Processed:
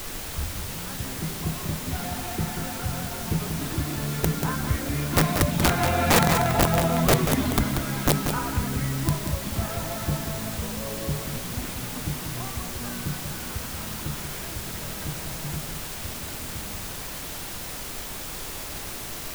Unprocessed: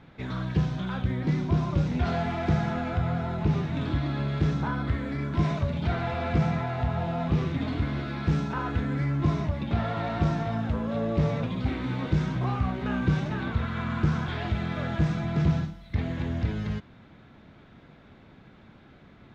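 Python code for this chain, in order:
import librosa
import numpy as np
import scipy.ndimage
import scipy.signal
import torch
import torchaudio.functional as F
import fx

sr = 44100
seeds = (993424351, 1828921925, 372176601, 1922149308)

p1 = fx.tape_start_head(x, sr, length_s=0.97)
p2 = fx.doppler_pass(p1, sr, speed_mps=14, closest_m=13.0, pass_at_s=6.51)
p3 = fx.dereverb_blind(p2, sr, rt60_s=0.74)
p4 = fx.quant_dither(p3, sr, seeds[0], bits=6, dither='triangular')
p5 = p3 + (p4 * 10.0 ** (-9.5 / 20.0))
p6 = (np.mod(10.0 ** (19.5 / 20.0) * p5 + 1.0, 2.0) - 1.0) / 10.0 ** (19.5 / 20.0)
p7 = p6 + fx.echo_single(p6, sr, ms=187, db=-7.0, dry=0)
p8 = fx.dmg_noise_colour(p7, sr, seeds[1], colour='pink', level_db=-45.0)
y = p8 * 10.0 ** (7.0 / 20.0)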